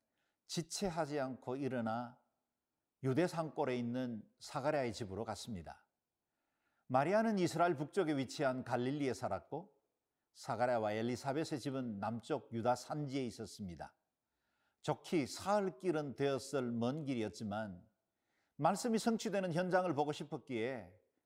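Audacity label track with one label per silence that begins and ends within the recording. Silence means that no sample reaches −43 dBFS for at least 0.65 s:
2.070000	3.040000	silence
5.720000	6.900000	silence
9.600000	10.420000	silence
13.860000	14.850000	silence
17.730000	18.590000	silence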